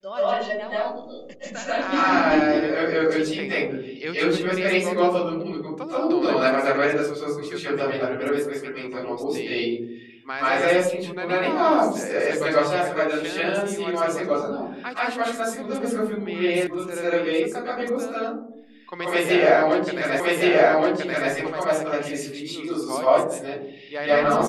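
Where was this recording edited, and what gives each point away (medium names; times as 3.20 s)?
16.67 s: sound stops dead
20.20 s: repeat of the last 1.12 s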